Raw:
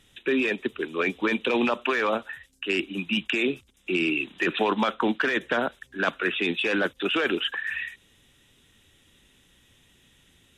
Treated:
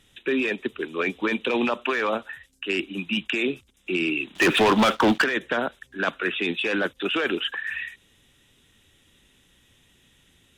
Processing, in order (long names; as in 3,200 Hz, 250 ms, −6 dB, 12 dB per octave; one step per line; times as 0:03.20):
0:04.35–0:05.24: leveller curve on the samples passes 3